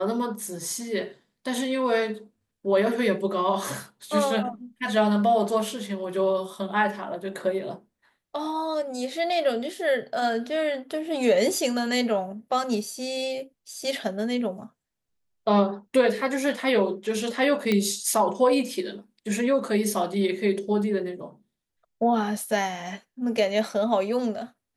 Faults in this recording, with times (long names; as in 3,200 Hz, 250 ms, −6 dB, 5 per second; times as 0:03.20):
0:17.72: click −11 dBFS